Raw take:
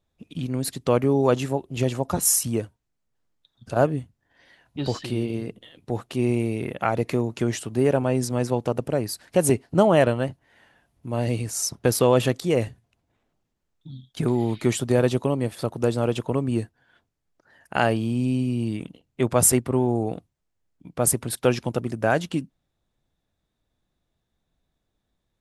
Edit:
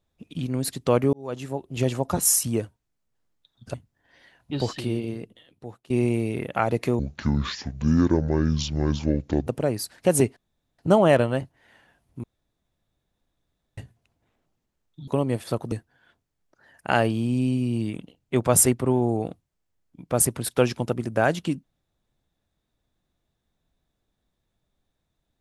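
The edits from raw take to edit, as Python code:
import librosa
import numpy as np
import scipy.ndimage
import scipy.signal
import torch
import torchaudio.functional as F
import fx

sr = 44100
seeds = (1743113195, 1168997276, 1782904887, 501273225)

y = fx.edit(x, sr, fx.fade_in_span(start_s=1.13, length_s=0.73),
    fx.cut(start_s=3.74, length_s=0.26),
    fx.fade_out_to(start_s=5.06, length_s=1.1, floor_db=-22.0),
    fx.speed_span(start_s=7.25, length_s=1.51, speed=0.61),
    fx.insert_room_tone(at_s=9.66, length_s=0.42),
    fx.room_tone_fill(start_s=11.11, length_s=1.54),
    fx.cut(start_s=13.95, length_s=1.24),
    fx.cut(start_s=15.83, length_s=0.75), tone=tone)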